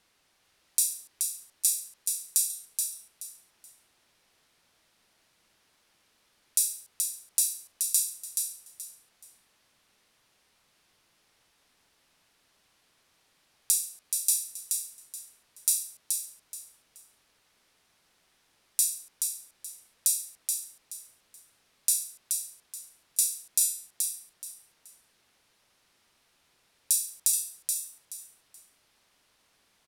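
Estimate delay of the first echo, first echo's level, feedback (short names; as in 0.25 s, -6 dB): 0.427 s, -5.0 dB, 26%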